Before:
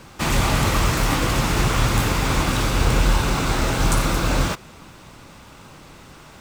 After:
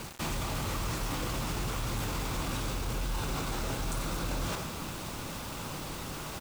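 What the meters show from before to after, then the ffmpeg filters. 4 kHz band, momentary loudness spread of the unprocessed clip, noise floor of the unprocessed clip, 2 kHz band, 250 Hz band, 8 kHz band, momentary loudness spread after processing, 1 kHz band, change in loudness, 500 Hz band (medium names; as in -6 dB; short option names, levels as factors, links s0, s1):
-12.0 dB, 2 LU, -45 dBFS, -14.5 dB, -13.0 dB, -11.0 dB, 5 LU, -13.0 dB, -14.5 dB, -12.5 dB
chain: -af "aecho=1:1:91:0.075,areverse,acompressor=threshold=0.0282:ratio=20,areverse,equalizer=f=1900:w=1.7:g=-3.5,bandreject=f=66.43:t=h:w=4,bandreject=f=132.86:t=h:w=4,bandreject=f=199.29:t=h:w=4,bandreject=f=265.72:t=h:w=4,bandreject=f=332.15:t=h:w=4,bandreject=f=398.58:t=h:w=4,bandreject=f=465.01:t=h:w=4,bandreject=f=531.44:t=h:w=4,bandreject=f=597.87:t=h:w=4,bandreject=f=664.3:t=h:w=4,bandreject=f=730.73:t=h:w=4,bandreject=f=797.16:t=h:w=4,bandreject=f=863.59:t=h:w=4,bandreject=f=930.02:t=h:w=4,bandreject=f=996.45:t=h:w=4,bandreject=f=1062.88:t=h:w=4,bandreject=f=1129.31:t=h:w=4,bandreject=f=1195.74:t=h:w=4,bandreject=f=1262.17:t=h:w=4,bandreject=f=1328.6:t=h:w=4,bandreject=f=1395.03:t=h:w=4,bandreject=f=1461.46:t=h:w=4,bandreject=f=1527.89:t=h:w=4,bandreject=f=1594.32:t=h:w=4,bandreject=f=1660.75:t=h:w=4,bandreject=f=1727.18:t=h:w=4,bandreject=f=1793.61:t=h:w=4,bandreject=f=1860.04:t=h:w=4,bandreject=f=1926.47:t=h:w=4,bandreject=f=1992.9:t=h:w=4,bandreject=f=2059.33:t=h:w=4,bandreject=f=2125.76:t=h:w=4,bandreject=f=2192.19:t=h:w=4,alimiter=level_in=2:limit=0.0631:level=0:latency=1:release=19,volume=0.501,acrusher=bits=7:mix=0:aa=0.000001,volume=1.78"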